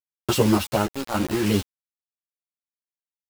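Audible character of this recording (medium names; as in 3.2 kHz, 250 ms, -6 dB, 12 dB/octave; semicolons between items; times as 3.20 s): random-step tremolo, depth 95%; a quantiser's noise floor 6-bit, dither none; a shimmering, thickened sound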